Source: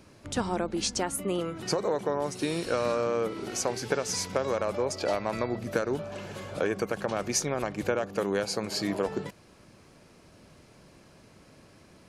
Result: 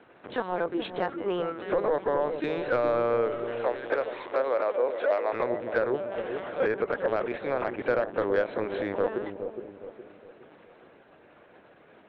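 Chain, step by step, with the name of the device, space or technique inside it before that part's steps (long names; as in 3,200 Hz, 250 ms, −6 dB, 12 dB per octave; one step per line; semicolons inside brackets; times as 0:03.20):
talking toy (linear-prediction vocoder at 8 kHz pitch kept; high-pass filter 480 Hz 12 dB per octave; parametric band 1,600 Hz +5 dB 0.45 octaves; soft clipping −21 dBFS, distortion −19 dB)
0:03.35–0:05.33: Chebyshev high-pass filter 420 Hz, order 2
spectral tilt −3 dB per octave
delay with a low-pass on its return 415 ms, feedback 40%, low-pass 580 Hz, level −6 dB
level +4 dB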